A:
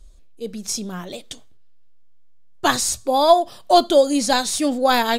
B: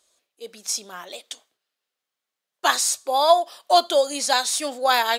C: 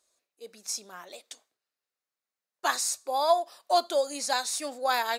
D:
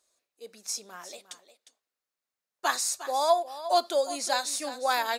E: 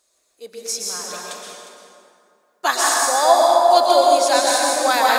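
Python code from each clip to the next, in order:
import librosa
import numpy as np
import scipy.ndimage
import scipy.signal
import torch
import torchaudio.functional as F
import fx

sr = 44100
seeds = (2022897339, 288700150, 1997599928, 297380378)

y1 = scipy.signal.sosfilt(scipy.signal.butter(2, 660.0, 'highpass', fs=sr, output='sos'), x)
y2 = fx.peak_eq(y1, sr, hz=3200.0, db=-8.0, octaves=0.3)
y2 = F.gain(torch.from_numpy(y2), -7.0).numpy()
y3 = y2 + 10.0 ** (-13.5 / 20.0) * np.pad(y2, (int(356 * sr / 1000.0), 0))[:len(y2)]
y4 = fx.rev_plate(y3, sr, seeds[0], rt60_s=2.5, hf_ratio=0.55, predelay_ms=105, drr_db=-3.5)
y4 = F.gain(torch.from_numpy(y4), 7.5).numpy()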